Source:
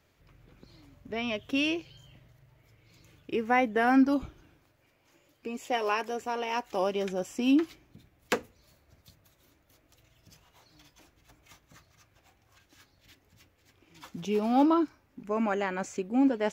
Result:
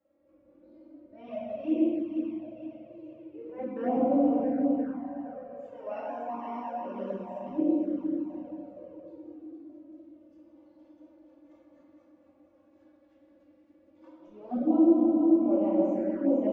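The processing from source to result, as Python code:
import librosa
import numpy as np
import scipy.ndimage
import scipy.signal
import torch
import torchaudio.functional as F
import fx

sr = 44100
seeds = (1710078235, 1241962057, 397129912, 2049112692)

p1 = fx.double_bandpass(x, sr, hz=410.0, octaves=0.78)
p2 = fx.auto_swell(p1, sr, attack_ms=244.0)
p3 = p2 + fx.echo_feedback(p2, sr, ms=466, feedback_pct=50, wet_db=-6.5, dry=0)
p4 = fx.room_shoebox(p3, sr, seeds[0], volume_m3=130.0, walls='hard', distance_m=1.1)
p5 = fx.env_flanger(p4, sr, rest_ms=3.7, full_db=-24.5)
y = F.gain(torch.from_numpy(p5), 3.0).numpy()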